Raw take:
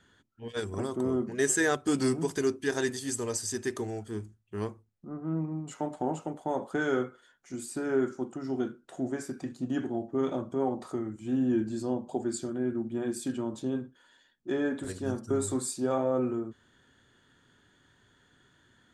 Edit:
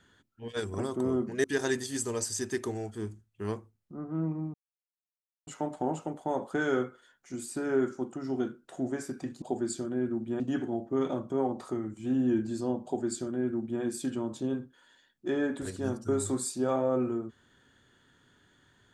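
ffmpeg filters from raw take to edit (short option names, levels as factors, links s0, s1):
-filter_complex "[0:a]asplit=5[s0][s1][s2][s3][s4];[s0]atrim=end=1.442[s5];[s1]atrim=start=2.568:end=5.67,asetpts=PTS-STARTPTS,afade=t=out:st=3.098:d=0.004:c=hsin,apad=pad_dur=0.93[s6];[s2]atrim=start=5.67:end=9.622,asetpts=PTS-STARTPTS,afade=t=in:d=0.004:c=hsin[s7];[s3]atrim=start=12.058:end=13.042[s8];[s4]atrim=start=9.618[s9];[s6][s7]concat=n=2:v=0:a=1[s10];[s5][s10]acrossfade=d=0.004:c1=hsin:c2=hsin[s11];[s11][s8]acrossfade=d=0.004:c1=hsin:c2=hsin[s12];[s12][s9]acrossfade=d=0.004:c1=hsin:c2=hsin"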